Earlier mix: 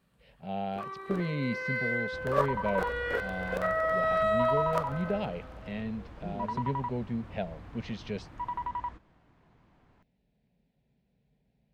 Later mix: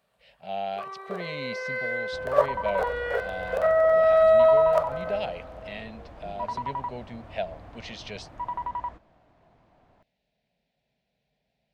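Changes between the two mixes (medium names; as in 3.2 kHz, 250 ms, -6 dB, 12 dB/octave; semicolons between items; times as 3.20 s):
speech: add tilt shelf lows -9.5 dB, about 1.2 kHz; first sound: add steep high-pass 380 Hz 96 dB/octave; master: add peaking EQ 650 Hz +11 dB 0.66 oct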